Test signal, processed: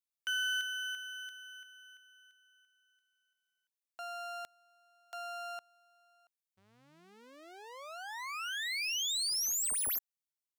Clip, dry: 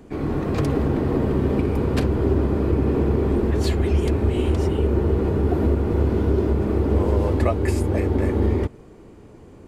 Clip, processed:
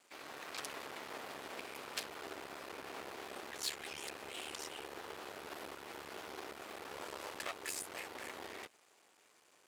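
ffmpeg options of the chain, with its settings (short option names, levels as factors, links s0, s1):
-filter_complex "[0:a]aeval=exprs='max(val(0),0)':c=same,aderivative,asplit=2[s0][s1];[s1]highpass=f=720:p=1,volume=3.16,asoftclip=type=tanh:threshold=0.0891[s2];[s0][s2]amix=inputs=2:normalize=0,lowpass=f=4700:p=1,volume=0.501"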